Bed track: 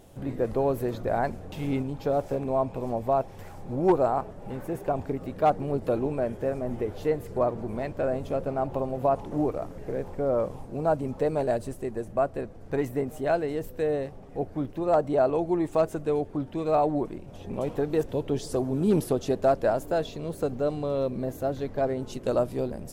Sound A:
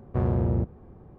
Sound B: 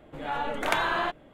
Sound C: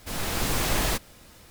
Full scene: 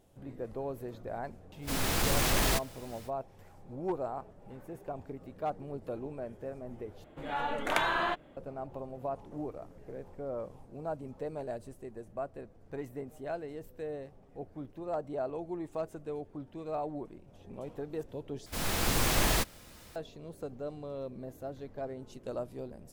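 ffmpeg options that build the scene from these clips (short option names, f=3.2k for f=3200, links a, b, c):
-filter_complex "[3:a]asplit=2[a][b];[0:a]volume=-12.5dB[c];[a]asoftclip=type=tanh:threshold=-19.5dB[d];[c]asplit=3[e][f][g];[e]atrim=end=7.044[h];[2:a]atrim=end=1.33,asetpts=PTS-STARTPTS,volume=-3dB[i];[f]atrim=start=8.366:end=18.464[j];[b]atrim=end=1.5,asetpts=PTS-STARTPTS,volume=-2dB[k];[g]atrim=start=19.956[l];[d]atrim=end=1.5,asetpts=PTS-STARTPTS,volume=-0.5dB,afade=t=in:d=0.05,afade=t=out:st=1.45:d=0.05,adelay=1610[m];[h][i]acrossfade=d=0.004:c1=hsin:c2=hsin[n];[n][j]acrossfade=d=0.004:c1=hsin:c2=hsin[o];[o][k]acrossfade=d=0.004:c1=hsin:c2=hsin[p];[p][l]acrossfade=d=0.004:c1=hsin:c2=hsin[q];[q][m]amix=inputs=2:normalize=0"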